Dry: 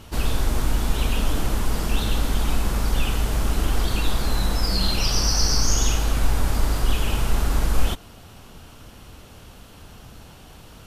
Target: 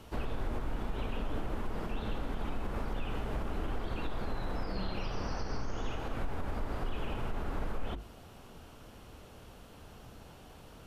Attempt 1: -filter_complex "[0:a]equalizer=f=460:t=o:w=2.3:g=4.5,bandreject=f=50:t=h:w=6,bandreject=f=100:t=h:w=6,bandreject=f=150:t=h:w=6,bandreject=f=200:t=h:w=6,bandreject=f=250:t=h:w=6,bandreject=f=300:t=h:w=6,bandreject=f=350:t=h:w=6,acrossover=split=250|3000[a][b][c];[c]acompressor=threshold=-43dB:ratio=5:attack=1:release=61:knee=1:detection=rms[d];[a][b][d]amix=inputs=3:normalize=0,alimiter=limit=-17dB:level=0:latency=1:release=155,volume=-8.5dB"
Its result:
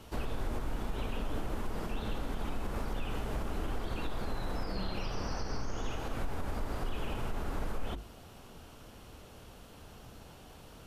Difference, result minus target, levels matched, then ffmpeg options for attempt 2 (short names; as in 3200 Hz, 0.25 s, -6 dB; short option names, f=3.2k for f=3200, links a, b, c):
compressor: peak gain reduction -7.5 dB
-filter_complex "[0:a]equalizer=f=460:t=o:w=2.3:g=4.5,bandreject=f=50:t=h:w=6,bandreject=f=100:t=h:w=6,bandreject=f=150:t=h:w=6,bandreject=f=200:t=h:w=6,bandreject=f=250:t=h:w=6,bandreject=f=300:t=h:w=6,bandreject=f=350:t=h:w=6,acrossover=split=250|3000[a][b][c];[c]acompressor=threshold=-52.5dB:ratio=5:attack=1:release=61:knee=1:detection=rms[d];[a][b][d]amix=inputs=3:normalize=0,alimiter=limit=-17dB:level=0:latency=1:release=155,volume=-8.5dB"